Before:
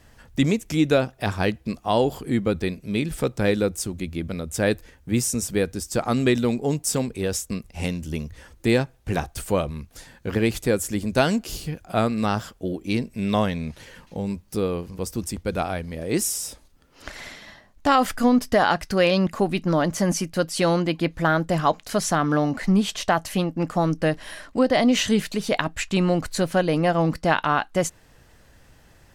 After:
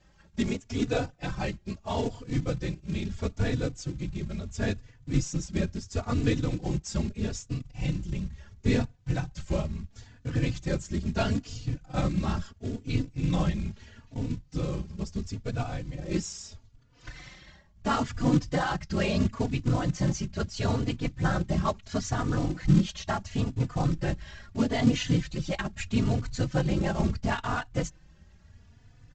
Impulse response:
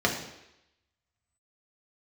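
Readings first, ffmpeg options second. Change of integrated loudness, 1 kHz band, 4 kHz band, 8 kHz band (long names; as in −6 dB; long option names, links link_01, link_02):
−6.5 dB, −10.0 dB, −8.5 dB, −11.0 dB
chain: -filter_complex "[0:a]afftfilt=real='hypot(re,im)*cos(2*PI*random(0))':imag='hypot(re,im)*sin(2*PI*random(1))':win_size=512:overlap=0.75,aresample=16000,acrusher=bits=4:mode=log:mix=0:aa=0.000001,aresample=44100,deesser=0.55,asubboost=boost=3:cutoff=220,asplit=2[link_01][link_02];[link_02]adelay=3.4,afreqshift=0.75[link_03];[link_01][link_03]amix=inputs=2:normalize=1"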